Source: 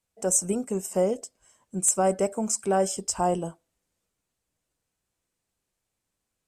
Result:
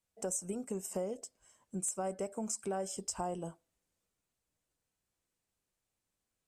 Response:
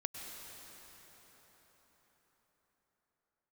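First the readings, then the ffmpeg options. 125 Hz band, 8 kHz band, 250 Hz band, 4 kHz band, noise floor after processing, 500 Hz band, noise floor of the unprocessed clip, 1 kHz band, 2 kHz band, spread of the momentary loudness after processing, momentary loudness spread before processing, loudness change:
−11.5 dB, −12.5 dB, −11.0 dB, −10.5 dB, below −85 dBFS, −13.0 dB, −83 dBFS, −13.5 dB, −13.0 dB, 9 LU, 11 LU, −13.0 dB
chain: -af "acompressor=threshold=-30dB:ratio=4,volume=-5dB"

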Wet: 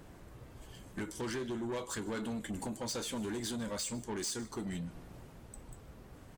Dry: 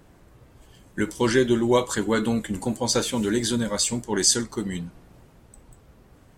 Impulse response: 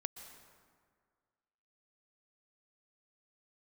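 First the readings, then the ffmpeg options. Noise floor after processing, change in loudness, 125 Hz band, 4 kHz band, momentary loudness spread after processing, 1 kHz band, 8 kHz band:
−55 dBFS, −15.0 dB, −12.5 dB, −15.0 dB, 16 LU, −14.0 dB, −15.5 dB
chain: -af "acompressor=threshold=-34dB:ratio=3,asoftclip=type=tanh:threshold=-33.5dB,aecho=1:1:152:0.075"

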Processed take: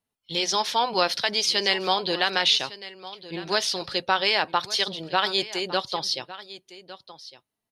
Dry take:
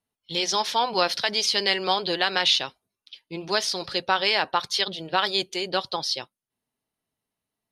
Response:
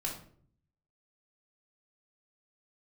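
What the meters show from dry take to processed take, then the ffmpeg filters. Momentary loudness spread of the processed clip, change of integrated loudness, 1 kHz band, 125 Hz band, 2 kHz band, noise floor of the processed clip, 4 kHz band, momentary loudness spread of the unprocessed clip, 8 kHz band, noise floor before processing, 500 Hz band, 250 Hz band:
18 LU, 0.0 dB, 0.0 dB, 0.0 dB, 0.0 dB, −85 dBFS, 0.0 dB, 7 LU, 0.0 dB, below −85 dBFS, 0.0 dB, 0.0 dB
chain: -af "aecho=1:1:1157:0.15"

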